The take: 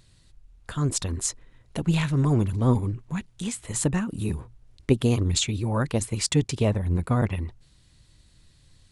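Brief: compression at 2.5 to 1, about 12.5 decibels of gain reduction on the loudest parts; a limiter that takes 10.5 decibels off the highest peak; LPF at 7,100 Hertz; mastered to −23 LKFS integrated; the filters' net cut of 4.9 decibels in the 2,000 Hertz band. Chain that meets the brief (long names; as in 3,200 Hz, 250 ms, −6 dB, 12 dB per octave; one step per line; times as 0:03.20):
low-pass filter 7,100 Hz
parametric band 2,000 Hz −6.5 dB
downward compressor 2.5 to 1, threshold −34 dBFS
level +15.5 dB
brickwall limiter −13.5 dBFS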